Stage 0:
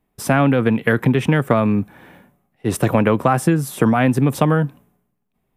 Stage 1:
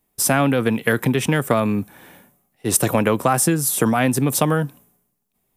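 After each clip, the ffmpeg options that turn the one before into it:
-af "bass=f=250:g=-3,treble=f=4k:g=14,volume=-1.5dB"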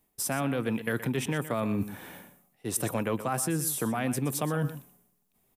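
-af "areverse,acompressor=threshold=-26dB:ratio=10,areverse,aecho=1:1:122:0.224"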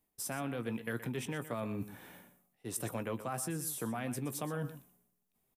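-filter_complex "[0:a]asplit=2[a][b];[b]adelay=17,volume=-12.5dB[c];[a][c]amix=inputs=2:normalize=0,volume=-8.5dB"

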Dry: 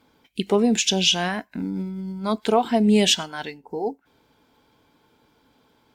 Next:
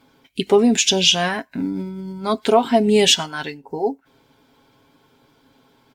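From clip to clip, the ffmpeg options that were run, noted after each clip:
-af "aecho=1:1:7.4:0.5,volume=3.5dB"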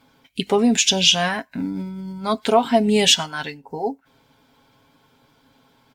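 -af "equalizer=f=360:t=o:w=0.48:g=-8"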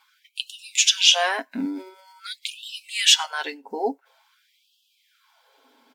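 -af "afftfilt=real='re*gte(b*sr/1024,210*pow(2600/210,0.5+0.5*sin(2*PI*0.47*pts/sr)))':imag='im*gte(b*sr/1024,210*pow(2600/210,0.5+0.5*sin(2*PI*0.47*pts/sr)))':win_size=1024:overlap=0.75"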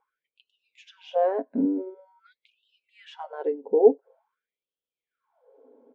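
-af "lowpass=f=480:t=q:w=4.9"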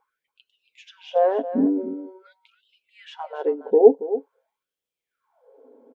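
-af "aecho=1:1:279:0.224,volume=4dB"

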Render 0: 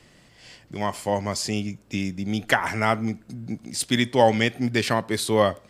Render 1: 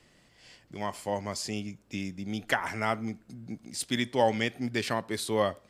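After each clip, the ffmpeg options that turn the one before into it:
-af "equalizer=f=120:w=1.1:g=-2.5,volume=-7dB"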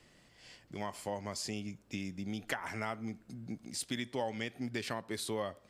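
-af "acompressor=threshold=-34dB:ratio=3,volume=-1.5dB"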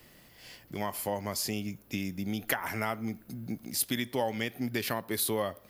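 -af "aexciter=amount=11.2:drive=3.1:freq=11k,volume=5.5dB"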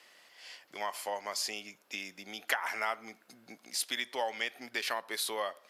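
-af "highpass=720,lowpass=7.6k,volume=1.5dB"

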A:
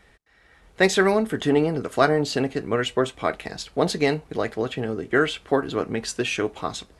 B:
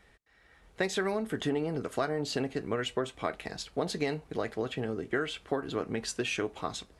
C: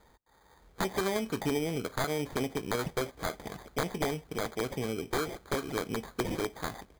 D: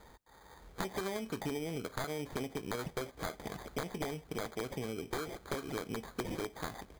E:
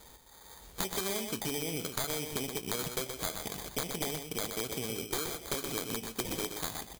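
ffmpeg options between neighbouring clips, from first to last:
-af "acompressor=threshold=-21dB:ratio=6,volume=-5.5dB"
-af "aresample=8000,aeval=exprs='(mod(10.6*val(0)+1,2)-1)/10.6':c=same,aresample=44100,acrusher=samples=16:mix=1:aa=0.000001"
-af "acompressor=threshold=-43dB:ratio=3,volume=4.5dB"
-filter_complex "[0:a]aexciter=amount=1.8:drive=8.6:freq=2.5k,asplit=2[a][b];[b]aecho=0:1:124:0.473[c];[a][c]amix=inputs=2:normalize=0"

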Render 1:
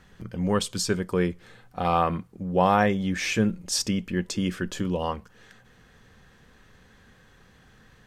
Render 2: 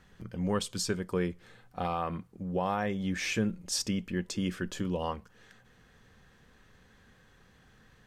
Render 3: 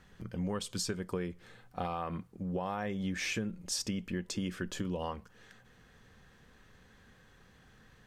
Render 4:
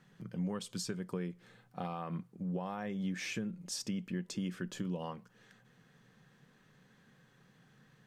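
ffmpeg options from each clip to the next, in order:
-af "alimiter=limit=-14dB:level=0:latency=1:release=247,volume=-5dB"
-af "acompressor=threshold=-31dB:ratio=10"
-af "lowshelf=f=100:t=q:w=3:g=-12,volume=-5dB"

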